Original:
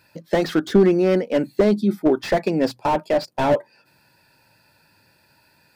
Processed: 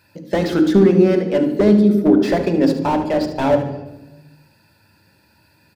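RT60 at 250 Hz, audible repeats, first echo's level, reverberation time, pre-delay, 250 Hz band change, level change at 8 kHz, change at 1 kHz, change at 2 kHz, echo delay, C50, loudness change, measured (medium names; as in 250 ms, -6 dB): 1.4 s, 2, -11.0 dB, 1.1 s, 3 ms, +6.5 dB, no reading, +1.0 dB, +1.0 dB, 73 ms, 7.0 dB, +4.5 dB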